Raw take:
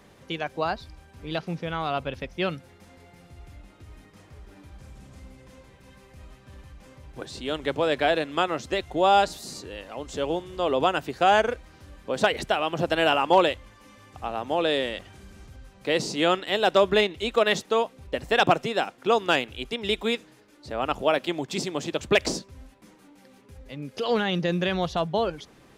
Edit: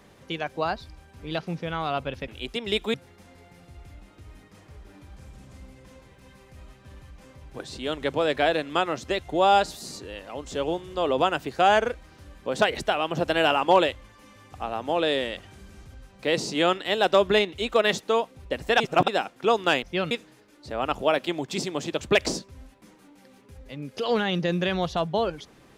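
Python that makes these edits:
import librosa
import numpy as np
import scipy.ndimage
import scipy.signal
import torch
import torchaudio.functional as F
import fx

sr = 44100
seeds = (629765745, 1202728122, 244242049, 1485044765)

y = fx.edit(x, sr, fx.swap(start_s=2.28, length_s=0.28, other_s=19.45, other_length_s=0.66),
    fx.reverse_span(start_s=18.42, length_s=0.28), tone=tone)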